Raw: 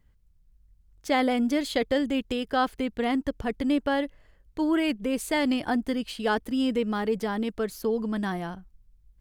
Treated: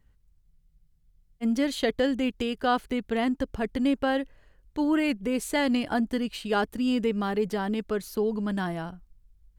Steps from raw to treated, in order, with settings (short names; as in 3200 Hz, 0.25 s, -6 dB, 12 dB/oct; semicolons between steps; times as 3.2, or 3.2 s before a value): speed mistake 25 fps video run at 24 fps; spectral freeze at 0.45, 0.97 s